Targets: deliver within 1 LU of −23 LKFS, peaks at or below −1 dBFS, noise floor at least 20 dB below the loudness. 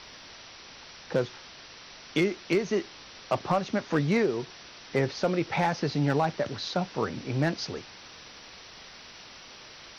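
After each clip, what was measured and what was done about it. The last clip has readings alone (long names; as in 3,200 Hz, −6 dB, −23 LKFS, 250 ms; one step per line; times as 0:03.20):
share of clipped samples 0.3%; peaks flattened at −16.5 dBFS; background noise floor −48 dBFS; target noise floor −49 dBFS; integrated loudness −29.0 LKFS; sample peak −16.5 dBFS; target loudness −23.0 LKFS
→ clipped peaks rebuilt −16.5 dBFS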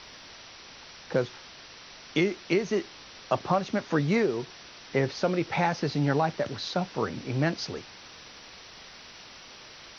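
share of clipped samples 0.0%; background noise floor −48 dBFS; target noise floor −49 dBFS
→ broadband denoise 6 dB, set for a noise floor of −48 dBFS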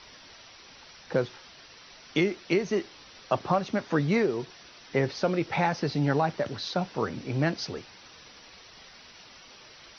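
background noise floor −51 dBFS; integrated loudness −28.5 LKFS; sample peak −12.0 dBFS; target loudness −23.0 LKFS
→ level +5.5 dB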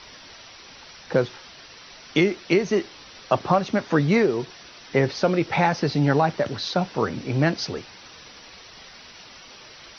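integrated loudness −23.0 LKFS; sample peak −6.5 dBFS; background noise floor −46 dBFS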